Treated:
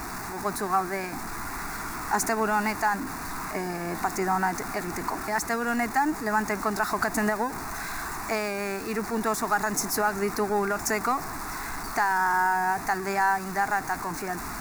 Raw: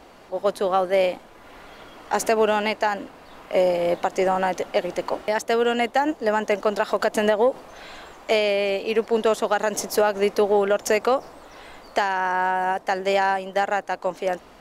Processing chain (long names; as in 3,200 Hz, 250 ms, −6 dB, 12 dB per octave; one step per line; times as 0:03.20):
converter with a step at zero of −26.5 dBFS
phaser with its sweep stopped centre 1,300 Hz, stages 4